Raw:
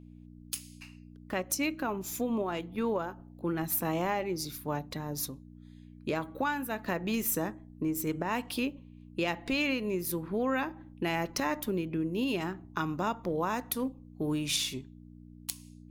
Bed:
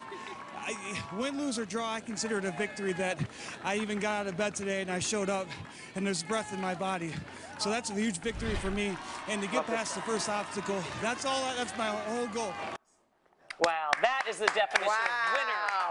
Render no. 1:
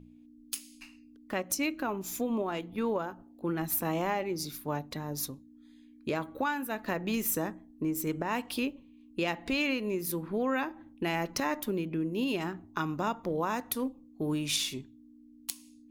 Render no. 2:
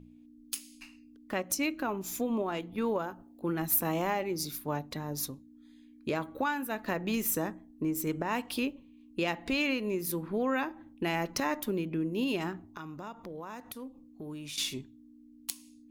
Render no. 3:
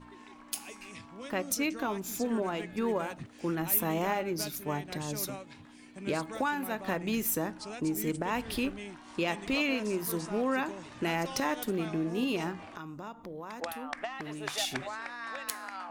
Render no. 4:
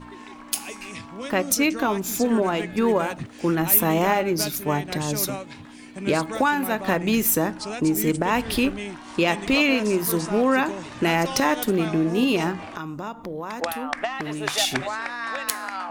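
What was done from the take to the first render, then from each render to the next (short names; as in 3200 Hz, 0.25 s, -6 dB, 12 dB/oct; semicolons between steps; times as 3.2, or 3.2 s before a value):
de-hum 60 Hz, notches 3
2.82–4.59 high shelf 9000 Hz +5.5 dB; 12.63–14.58 compressor 2.5:1, threshold -44 dBFS
add bed -11 dB
gain +10 dB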